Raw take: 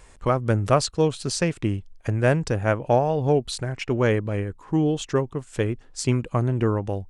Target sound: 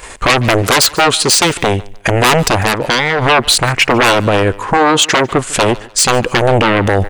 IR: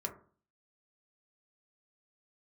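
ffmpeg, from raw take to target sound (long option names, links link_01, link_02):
-filter_complex "[0:a]asettb=1/sr,asplit=3[link_01][link_02][link_03];[link_01]atrim=end=0.624[link_04];[link_02]atrim=start=0.62:end=1.5,asetpts=PTS-STARTPTS,afade=type=in:duration=0.004:curve=qsin,afade=type=out:start_time=0.876:duration=0.004:curve=qsin,lowshelf=frequency=160:gain=-7.5[link_05];[link_03]atrim=start=1.496[link_06];[link_04][link_05]acrossfade=duration=0.004:curve1=hsin:curve2=qsin[link_07];[link_07][link_06]acrossfade=duration=0.004:curve1=qsin:curve2=hsin,aeval=exprs='0.501*sin(PI/2*7.08*val(0)/0.501)':channel_layout=same,crystalizer=i=4:c=0,agate=range=-11dB:threshold=-23dB:ratio=16:detection=peak,dynaudnorm=framelen=340:gausssize=3:maxgain=11.5dB,bass=frequency=250:gain=-9,treble=frequency=4000:gain=-13,bandreject=frequency=5500:width=24,aecho=1:1:148|296:0.0631|0.0177,asplit=3[link_08][link_09][link_10];[link_08]afade=type=out:start_time=2.61:duration=0.02[link_11];[link_09]acompressor=threshold=-26dB:ratio=5,afade=type=in:start_time=2.61:duration=0.02,afade=type=out:start_time=3.21:duration=0.02[link_12];[link_10]afade=type=in:start_time=3.21:duration=0.02[link_13];[link_11][link_12][link_13]amix=inputs=3:normalize=0,asettb=1/sr,asplit=3[link_14][link_15][link_16];[link_14]atrim=end=4.774[link_17];[link_15]atrim=start=4.77:end=5.31,asetpts=PTS-STARTPTS,afade=type=in:duration=0.004:curve=qsin,afade=type=out:start_time=0.536:duration=0.004:curve=qsin,highpass=120[link_18];[link_16]atrim=start=5.306[link_19];[link_17][link_18]acrossfade=duration=0.004:curve1=hsin:curve2=qsin[link_20];[link_20][link_19]acrossfade=duration=0.004:curve1=qsin:curve2=hsin,alimiter=level_in=16dB:limit=-1dB:release=50:level=0:latency=1,volume=-1dB"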